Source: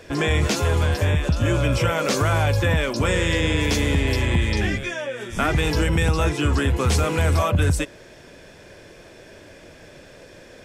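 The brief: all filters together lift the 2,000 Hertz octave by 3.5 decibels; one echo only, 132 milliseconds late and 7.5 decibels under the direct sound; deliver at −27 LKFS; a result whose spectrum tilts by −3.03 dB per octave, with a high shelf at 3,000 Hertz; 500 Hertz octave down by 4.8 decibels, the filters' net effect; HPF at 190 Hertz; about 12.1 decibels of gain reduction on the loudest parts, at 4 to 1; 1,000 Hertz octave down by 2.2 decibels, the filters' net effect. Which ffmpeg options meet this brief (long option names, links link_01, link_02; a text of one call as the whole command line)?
ffmpeg -i in.wav -af "highpass=190,equalizer=frequency=500:width_type=o:gain=-5,equalizer=frequency=1000:width_type=o:gain=-4,equalizer=frequency=2000:width_type=o:gain=4,highshelf=frequency=3000:gain=4.5,acompressor=threshold=-33dB:ratio=4,aecho=1:1:132:0.422,volume=6dB" out.wav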